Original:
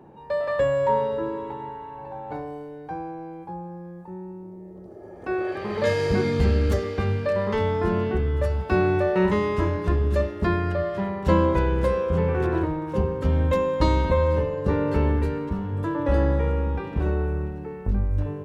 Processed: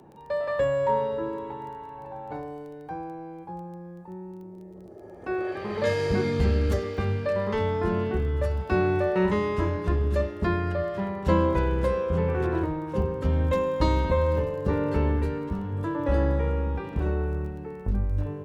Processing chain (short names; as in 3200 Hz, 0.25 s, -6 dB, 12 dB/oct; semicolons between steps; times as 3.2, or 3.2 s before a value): crackle 11/s -40 dBFS, from 13.43 s 100/s, from 14.69 s 11/s; gain -2.5 dB